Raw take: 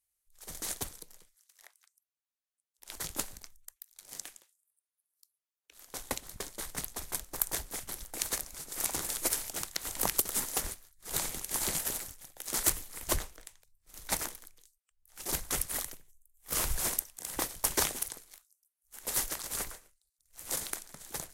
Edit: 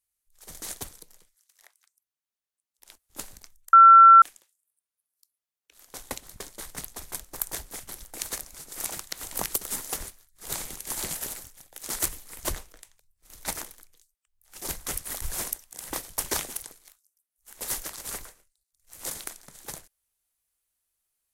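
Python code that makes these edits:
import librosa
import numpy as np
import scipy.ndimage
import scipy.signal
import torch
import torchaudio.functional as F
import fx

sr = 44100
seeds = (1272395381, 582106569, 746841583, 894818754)

y = fx.edit(x, sr, fx.room_tone_fill(start_s=2.91, length_s=0.26, crossfade_s=0.16),
    fx.bleep(start_s=3.73, length_s=0.49, hz=1350.0, db=-8.0),
    fx.cut(start_s=8.91, length_s=0.64),
    fx.cut(start_s=15.86, length_s=0.82), tone=tone)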